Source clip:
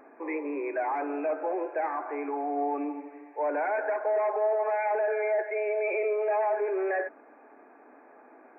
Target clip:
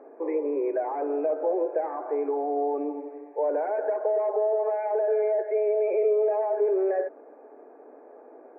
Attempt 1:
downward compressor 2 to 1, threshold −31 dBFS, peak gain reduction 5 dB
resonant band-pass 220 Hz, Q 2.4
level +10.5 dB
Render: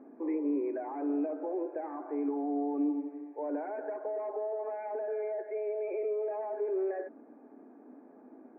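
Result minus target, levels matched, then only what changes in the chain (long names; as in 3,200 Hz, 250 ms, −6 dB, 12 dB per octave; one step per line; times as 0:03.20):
250 Hz band +10.0 dB
change: resonant band-pass 470 Hz, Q 2.4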